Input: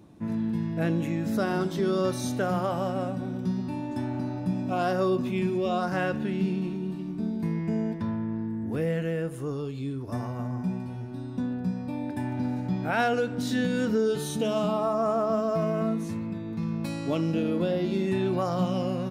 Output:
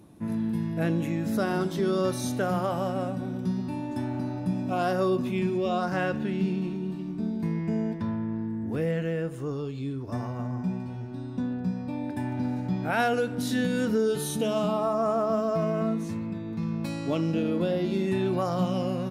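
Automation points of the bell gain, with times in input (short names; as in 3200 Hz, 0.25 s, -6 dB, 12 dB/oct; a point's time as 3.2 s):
bell 11000 Hz 0.42 oct
+13 dB
from 0.78 s +4.5 dB
from 5.36 s -3.5 dB
from 8.91 s -10.5 dB
from 12.04 s -1 dB
from 12.9 s +9.5 dB
from 14.45 s +2.5 dB
from 15.5 s -3.5 dB
from 17.61 s +3.5 dB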